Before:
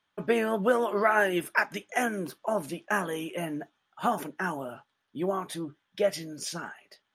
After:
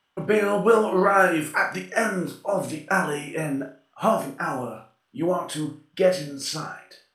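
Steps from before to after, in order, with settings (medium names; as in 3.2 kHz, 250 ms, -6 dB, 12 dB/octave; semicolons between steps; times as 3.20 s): rotating-head pitch shifter -1.5 st; flutter echo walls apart 5.6 m, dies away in 0.36 s; trim +5.5 dB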